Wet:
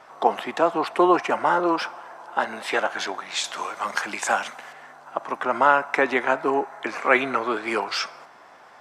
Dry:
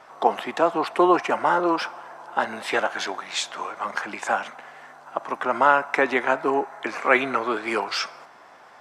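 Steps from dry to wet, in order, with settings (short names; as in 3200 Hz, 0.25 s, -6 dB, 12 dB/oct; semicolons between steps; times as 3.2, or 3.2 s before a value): 1.95–2.85 HPF 170 Hz 6 dB/oct; 3.44–4.73 high shelf 3200 Hz +11 dB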